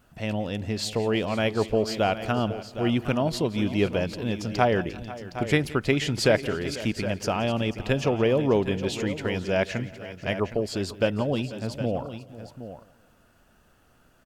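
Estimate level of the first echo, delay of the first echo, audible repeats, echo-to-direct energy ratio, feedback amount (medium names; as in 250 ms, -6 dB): -19.0 dB, 173 ms, 5, -10.0 dB, no regular repeats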